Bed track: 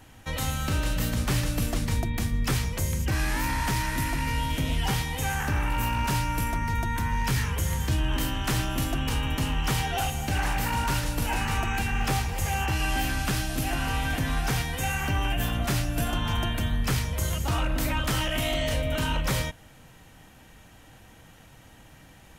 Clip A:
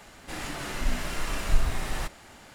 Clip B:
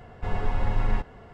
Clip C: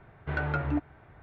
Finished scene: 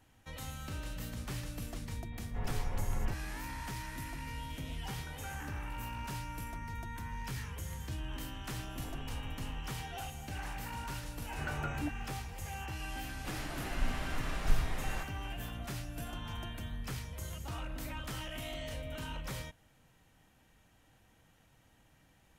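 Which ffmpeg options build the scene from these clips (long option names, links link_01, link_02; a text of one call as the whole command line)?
ffmpeg -i bed.wav -i cue0.wav -i cue1.wav -i cue2.wav -filter_complex "[2:a]asplit=2[link_01][link_02];[3:a]asplit=2[link_03][link_04];[0:a]volume=-14.5dB[link_05];[link_01]lowpass=3200[link_06];[link_03]acompressor=threshold=-34dB:ratio=6:attack=3.2:release=140:knee=1:detection=peak[link_07];[link_02]acompressor=threshold=-30dB:ratio=6:attack=3.2:release=140:knee=1:detection=peak[link_08];[1:a]highshelf=frequency=5500:gain=-10.5[link_09];[link_06]atrim=end=1.33,asetpts=PTS-STARTPTS,volume=-11dB,afade=type=in:duration=0.004:curve=hsin,afade=type=out:start_time=1.326:duration=0.004:curve=hsin,adelay=2120[link_10];[link_07]atrim=end=1.22,asetpts=PTS-STARTPTS,volume=-13dB,afade=type=in:duration=0.004:curve=hsin,afade=type=out:start_time=1.216:duration=0.004:curve=hsin,adelay=4700[link_11];[link_08]atrim=end=1.33,asetpts=PTS-STARTPTS,volume=-12.5dB,afade=type=in:duration=0.004:curve=hsin,afade=type=out:start_time=1.326:duration=0.004:curve=hsin,adelay=8570[link_12];[link_04]atrim=end=1.22,asetpts=PTS-STARTPTS,volume=-9dB,afade=type=in:duration=0.004:curve=hsin,afade=type=out:start_time=1.216:duration=0.004:curve=hsin,adelay=11100[link_13];[link_09]atrim=end=2.54,asetpts=PTS-STARTPTS,volume=-6.5dB,afade=type=in:duration=0.004:curve=hsin,afade=type=out:start_time=2.536:duration=0.004:curve=hsin,adelay=12960[link_14];[link_05][link_10][link_11][link_12][link_13][link_14]amix=inputs=6:normalize=0" out.wav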